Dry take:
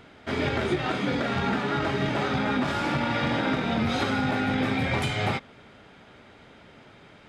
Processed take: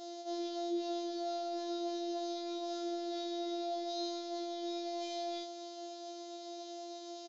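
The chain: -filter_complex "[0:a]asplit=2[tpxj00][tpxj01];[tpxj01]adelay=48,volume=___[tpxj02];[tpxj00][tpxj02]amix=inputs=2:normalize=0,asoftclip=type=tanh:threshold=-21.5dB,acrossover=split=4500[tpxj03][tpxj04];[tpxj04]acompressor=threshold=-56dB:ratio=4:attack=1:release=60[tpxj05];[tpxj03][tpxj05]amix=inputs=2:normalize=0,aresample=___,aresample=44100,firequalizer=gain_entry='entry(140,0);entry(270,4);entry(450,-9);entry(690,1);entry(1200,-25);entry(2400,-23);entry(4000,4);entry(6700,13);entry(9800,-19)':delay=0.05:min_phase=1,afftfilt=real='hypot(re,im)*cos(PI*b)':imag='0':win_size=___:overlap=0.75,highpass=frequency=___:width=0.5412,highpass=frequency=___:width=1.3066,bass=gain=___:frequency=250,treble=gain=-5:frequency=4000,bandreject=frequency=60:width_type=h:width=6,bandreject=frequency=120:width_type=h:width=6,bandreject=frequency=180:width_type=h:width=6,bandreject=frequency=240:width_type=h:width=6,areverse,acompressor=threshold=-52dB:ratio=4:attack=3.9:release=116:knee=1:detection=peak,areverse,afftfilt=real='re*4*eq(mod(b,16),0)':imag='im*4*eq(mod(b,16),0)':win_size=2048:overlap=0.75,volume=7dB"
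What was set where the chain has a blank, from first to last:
-9.5dB, 16000, 1024, 61, 61, -12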